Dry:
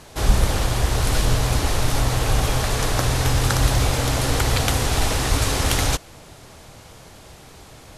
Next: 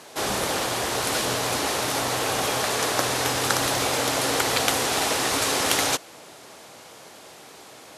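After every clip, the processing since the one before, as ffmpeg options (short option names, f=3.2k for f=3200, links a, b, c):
-af "highpass=290,volume=1dB"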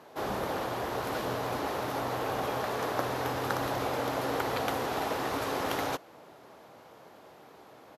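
-af "firequalizer=gain_entry='entry(920,0);entry(2300,-8);entry(8900,-20);entry(13000,-6)':delay=0.05:min_phase=1,volume=-5dB"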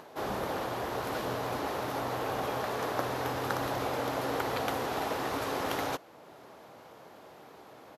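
-af "acompressor=mode=upward:threshold=-45dB:ratio=2.5,volume=-1dB"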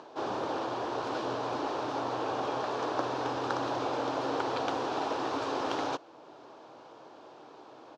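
-af "highpass=140,equalizer=f=190:t=q:w=4:g=-9,equalizer=f=320:t=q:w=4:g=5,equalizer=f=950:t=q:w=4:g=3,equalizer=f=2k:t=q:w=4:g=-9,lowpass=f=6.2k:w=0.5412,lowpass=f=6.2k:w=1.3066"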